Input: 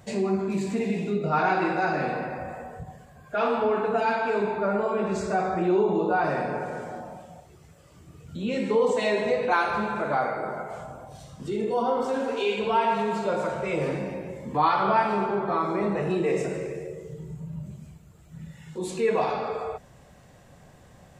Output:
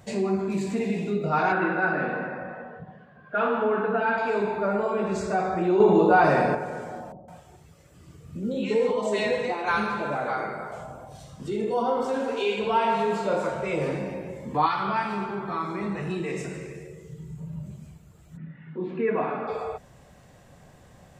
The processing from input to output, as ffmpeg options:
ffmpeg -i in.wav -filter_complex "[0:a]asettb=1/sr,asplit=3[link_01][link_02][link_03];[link_01]atrim=end=1.524[link_04];[link_02]atrim=start=1.52:end=4.18,asetpts=PTS-STARTPTS,afade=type=in:duration=0.004:curve=qsin,afade=type=out:start_time=2.656:duration=0.004:curve=qsin,highpass=170,equalizer=frequency=190:width_type=q:width=4:gain=6,equalizer=frequency=770:width_type=q:width=4:gain=-4,equalizer=frequency=1500:width_type=q:width=4:gain=6,equalizer=frequency=2300:width_type=q:width=4:gain=-5,lowpass=frequency=3200:width=0.5412,lowpass=frequency=3200:width=1.3066[link_05];[link_03]atrim=start=4.176[link_06];[link_04][link_05]acrossfade=duration=0.004:curve1=hsin:curve2=qsin[link_07];[link_07][link_06]acrossfade=duration=0.004:curve1=qsin:curve2=hsin,asettb=1/sr,asplit=3[link_08][link_09][link_10];[link_08]atrim=end=5.804[link_11];[link_09]atrim=start=5.8:end=6.55,asetpts=PTS-STARTPTS,afade=type=in:duration=0.004:curve=qsin,afade=type=out:start_time=0.746:duration=0.004:curve=qsin,acontrast=62[link_12];[link_10]atrim=start=6.546[link_13];[link_11][link_12]acrossfade=duration=0.004:curve1=hsin:curve2=qsin[link_14];[link_14][link_13]acrossfade=duration=0.004:curve1=qsin:curve2=hsin,asettb=1/sr,asplit=3[link_15][link_16][link_17];[link_15]atrim=end=7.124[link_18];[link_16]atrim=start=7.12:end=10.72,asetpts=PTS-STARTPTS,afade=type=in:duration=0.004:curve=qsin,afade=type=out:start_time=3.596:duration=0.004:curve=qsin,acrossover=split=770[link_19][link_20];[link_20]adelay=160[link_21];[link_19][link_21]amix=inputs=2:normalize=0,atrim=end_sample=158760[link_22];[link_17]atrim=start=10.716[link_23];[link_18][link_22]acrossfade=duration=0.004:curve1=hsin:curve2=qsin[link_24];[link_24][link_23]acrossfade=duration=0.004:curve1=qsin:curve2=hsin,asettb=1/sr,asplit=3[link_25][link_26][link_27];[link_25]atrim=end=12.734[link_28];[link_26]atrim=start=12.73:end=13.5,asetpts=PTS-STARTPTS,afade=type=in:duration=0.004:curve=qsin,afade=type=out:start_time=0.766:duration=0.004:curve=qsin,asplit=2[link_29][link_30];[link_30]adelay=31,volume=-5.5dB[link_31];[link_29][link_31]amix=inputs=2:normalize=0,atrim=end_sample=33957[link_32];[link_27]atrim=start=13.496[link_33];[link_28][link_32]acrossfade=duration=0.004:curve1=hsin:curve2=qsin[link_34];[link_34][link_33]acrossfade=duration=0.004:curve1=qsin:curve2=hsin,asettb=1/sr,asplit=3[link_35][link_36][link_37];[link_35]atrim=end=14.664[link_38];[link_36]atrim=start=14.66:end=17.38,asetpts=PTS-STARTPTS,afade=type=in:duration=0.004:curve=qsin,afade=type=out:start_time=2.716:duration=0.004:curve=qsin,equalizer=frequency=560:width=1.1:gain=-11[link_39];[link_37]atrim=start=17.376[link_40];[link_38][link_39]acrossfade=duration=0.004:curve1=hsin:curve2=qsin[link_41];[link_41][link_40]acrossfade=duration=0.004:curve1=qsin:curve2=hsin,asplit=3[link_42][link_43][link_44];[link_42]afade=type=out:start_time=18.36:duration=0.02[link_45];[link_43]highpass=160,equalizer=frequency=160:width_type=q:width=4:gain=4,equalizer=frequency=270:width_type=q:width=4:gain=10,equalizer=frequency=510:width_type=q:width=4:gain=-5,equalizer=frequency=840:width_type=q:width=4:gain=-6,equalizer=frequency=1500:width_type=q:width=4:gain=3,lowpass=frequency=2300:width=0.5412,lowpass=frequency=2300:width=1.3066,afade=type=in:start_time=18.36:duration=0.02,afade=type=out:start_time=19.47:duration=0.02[link_46];[link_44]afade=type=in:start_time=19.47:duration=0.02[link_47];[link_45][link_46][link_47]amix=inputs=3:normalize=0" out.wav

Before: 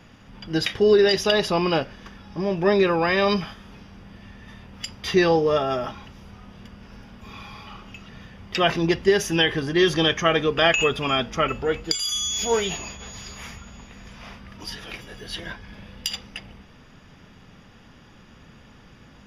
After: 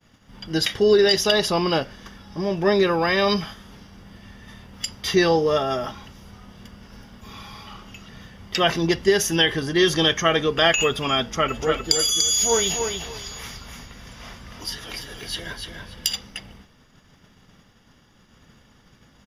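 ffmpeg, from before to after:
ffmpeg -i in.wav -filter_complex "[0:a]asplit=3[link_01][link_02][link_03];[link_01]afade=type=out:start_time=11.52:duration=0.02[link_04];[link_02]aecho=1:1:292|584|876:0.531|0.117|0.0257,afade=type=in:start_time=11.52:duration=0.02,afade=type=out:start_time=16.11:duration=0.02[link_05];[link_03]afade=type=in:start_time=16.11:duration=0.02[link_06];[link_04][link_05][link_06]amix=inputs=3:normalize=0,bandreject=frequency=2500:width=10,agate=range=-33dB:threshold=-43dB:ratio=3:detection=peak,highshelf=frequency=5400:gain=10.5" out.wav

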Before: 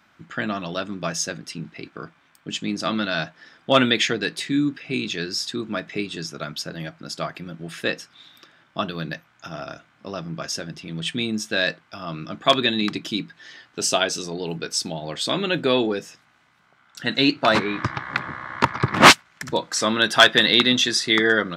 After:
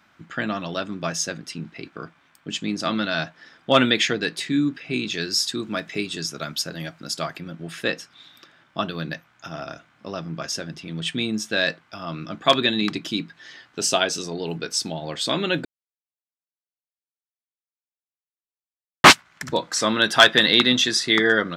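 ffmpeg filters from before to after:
ffmpeg -i in.wav -filter_complex "[0:a]asettb=1/sr,asplit=3[link_01][link_02][link_03];[link_01]atrim=end=5.134[link_04];[link_02]atrim=start=5.13:end=7.37,asetpts=PTS-STARTPTS,afade=type=in:duration=0.004:curve=qsin,afade=type=out:start_time=2.236:duration=0.004:curve=qsin,aemphasis=mode=production:type=cd[link_05];[link_03]atrim=start=7.366[link_06];[link_04][link_05]acrossfade=duration=0.004:curve1=hsin:curve2=qsin[link_07];[link_07][link_06]acrossfade=duration=0.004:curve1=qsin:curve2=hsin,asplit=3[link_08][link_09][link_10];[link_08]atrim=end=15.65,asetpts=PTS-STARTPTS,afade=type=out:start_time=15.646:duration=0.004:curve=hsin[link_11];[link_09]atrim=start=15.65:end=19.04,asetpts=PTS-STARTPTS,volume=0[link_12];[link_10]atrim=start=19.04,asetpts=PTS-STARTPTS,afade=type=in:duration=0.004:curve=hsin[link_13];[link_11][link_12][link_13]concat=n=3:v=0:a=1" out.wav

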